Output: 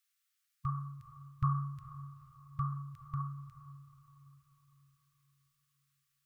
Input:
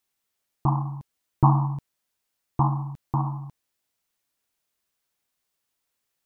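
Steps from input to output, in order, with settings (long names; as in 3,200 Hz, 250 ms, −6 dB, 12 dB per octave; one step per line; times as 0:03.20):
linear-phase brick-wall band-stop 150–1,100 Hz
low-shelf EQ 370 Hz −9 dB
feedback delay with all-pass diffusion 454 ms, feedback 45%, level −15 dB
level −1.5 dB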